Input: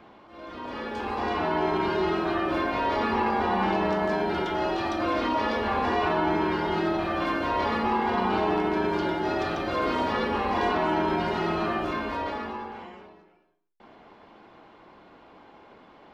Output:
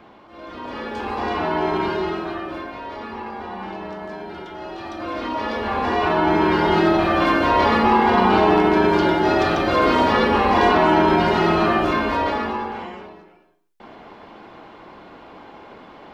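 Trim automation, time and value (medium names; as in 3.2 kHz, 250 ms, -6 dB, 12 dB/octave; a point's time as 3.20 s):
1.83 s +4 dB
2.80 s -7 dB
4.59 s -7 dB
5.30 s 0 dB
6.66 s +9.5 dB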